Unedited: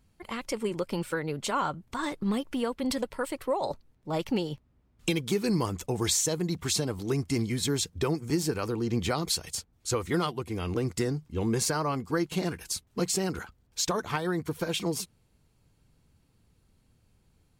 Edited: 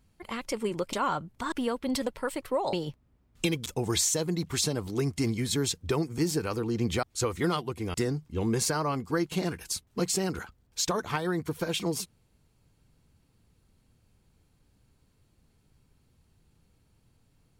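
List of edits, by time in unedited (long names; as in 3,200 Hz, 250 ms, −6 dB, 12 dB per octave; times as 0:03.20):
0:00.93–0:01.46: remove
0:02.05–0:02.48: remove
0:03.69–0:04.37: remove
0:05.30–0:05.78: remove
0:09.15–0:09.73: remove
0:10.64–0:10.94: remove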